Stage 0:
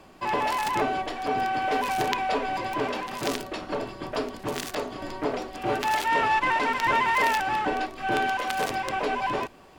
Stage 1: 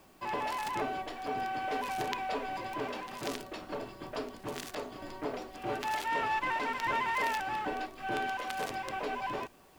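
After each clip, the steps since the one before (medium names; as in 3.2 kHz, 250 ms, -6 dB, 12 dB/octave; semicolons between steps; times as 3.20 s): word length cut 10-bit, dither triangular; trim -8.5 dB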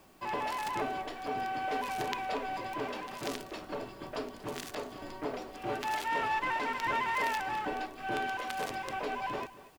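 delay 235 ms -17.5 dB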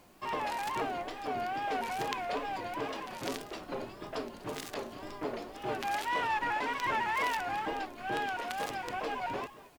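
wow and flutter 130 cents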